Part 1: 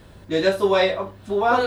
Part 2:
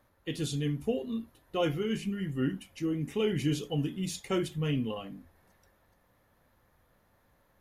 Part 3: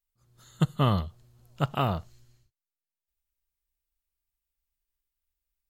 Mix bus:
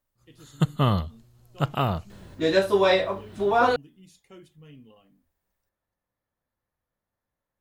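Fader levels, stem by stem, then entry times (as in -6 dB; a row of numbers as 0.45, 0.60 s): -1.5, -18.5, +2.0 dB; 2.10, 0.00, 0.00 s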